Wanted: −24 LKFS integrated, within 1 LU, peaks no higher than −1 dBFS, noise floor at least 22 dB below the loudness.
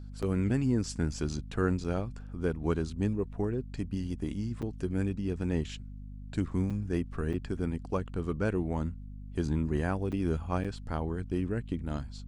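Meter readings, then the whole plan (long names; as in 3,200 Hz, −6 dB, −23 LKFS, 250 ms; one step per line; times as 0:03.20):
number of dropouts 7; longest dropout 6.4 ms; mains hum 50 Hz; hum harmonics up to 250 Hz; level of the hum −41 dBFS; integrated loudness −33.0 LKFS; sample peak −15.0 dBFS; target loudness −24.0 LKFS
→ repair the gap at 0:00.22/0:01.84/0:04.62/0:06.70/0:07.33/0:10.12/0:10.64, 6.4 ms
hum removal 50 Hz, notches 5
level +9 dB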